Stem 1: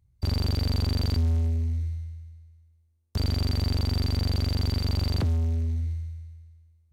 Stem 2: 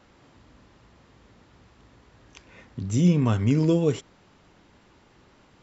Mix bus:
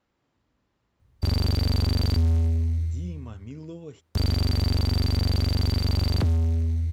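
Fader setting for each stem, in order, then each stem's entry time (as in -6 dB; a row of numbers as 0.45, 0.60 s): +2.5, -18.5 dB; 1.00, 0.00 s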